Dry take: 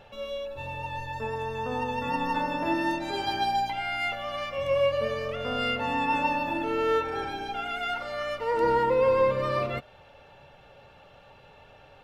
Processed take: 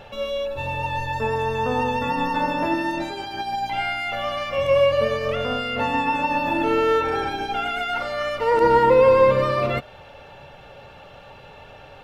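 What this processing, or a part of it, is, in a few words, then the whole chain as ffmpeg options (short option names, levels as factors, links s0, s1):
de-esser from a sidechain: -filter_complex "[0:a]asplit=2[s0][s1];[s1]highpass=f=4700:w=0.5412,highpass=f=4700:w=1.3066,apad=whole_len=530816[s2];[s0][s2]sidechaincompress=threshold=0.002:ratio=12:attack=4.6:release=53,volume=2.82"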